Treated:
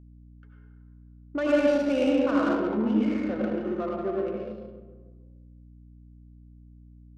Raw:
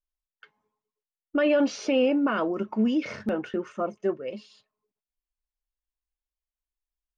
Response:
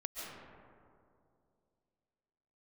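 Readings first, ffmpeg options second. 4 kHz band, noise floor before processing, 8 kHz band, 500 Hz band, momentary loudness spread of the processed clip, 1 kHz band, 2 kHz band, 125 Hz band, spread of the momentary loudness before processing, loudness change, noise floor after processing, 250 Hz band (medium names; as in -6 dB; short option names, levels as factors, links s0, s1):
-4.0 dB, under -85 dBFS, no reading, +0.5 dB, 13 LU, 0.0 dB, -1.5 dB, +3.5 dB, 10 LU, +0.5 dB, -51 dBFS, +1.0 dB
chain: -filter_complex "[1:a]atrim=start_sample=2205,asetrate=79380,aresample=44100[s0];[0:a][s0]afir=irnorm=-1:irlink=0,adynamicsmooth=sensitivity=6:basefreq=1100,aeval=exprs='val(0)+0.00224*(sin(2*PI*60*n/s)+sin(2*PI*2*60*n/s)/2+sin(2*PI*3*60*n/s)/3+sin(2*PI*4*60*n/s)/4+sin(2*PI*5*60*n/s)/5)':c=same,volume=1.68"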